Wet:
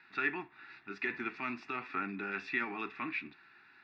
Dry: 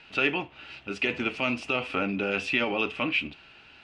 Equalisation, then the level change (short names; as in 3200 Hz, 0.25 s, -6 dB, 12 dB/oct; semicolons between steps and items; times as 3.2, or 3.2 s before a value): speaker cabinet 180–4800 Hz, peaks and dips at 370 Hz +7 dB, 1800 Hz +8 dB, 3500 Hz +8 dB; bell 2400 Hz +3.5 dB 2.7 oct; fixed phaser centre 1300 Hz, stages 4; -8.0 dB